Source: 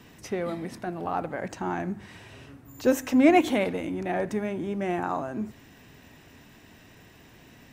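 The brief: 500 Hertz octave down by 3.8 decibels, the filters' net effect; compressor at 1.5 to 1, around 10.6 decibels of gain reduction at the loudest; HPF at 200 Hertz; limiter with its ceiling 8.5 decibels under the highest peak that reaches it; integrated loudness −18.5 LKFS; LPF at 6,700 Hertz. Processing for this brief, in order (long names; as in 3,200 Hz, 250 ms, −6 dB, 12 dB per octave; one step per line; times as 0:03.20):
high-pass filter 200 Hz
low-pass filter 6,700 Hz
parametric band 500 Hz −5 dB
downward compressor 1.5 to 1, threshold −47 dBFS
level +23 dB
brickwall limiter −6.5 dBFS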